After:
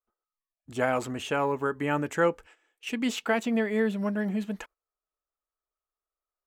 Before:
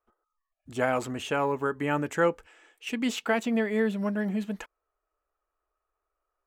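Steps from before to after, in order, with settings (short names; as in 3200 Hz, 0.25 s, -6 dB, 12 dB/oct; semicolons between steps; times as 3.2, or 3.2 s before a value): gate -51 dBFS, range -13 dB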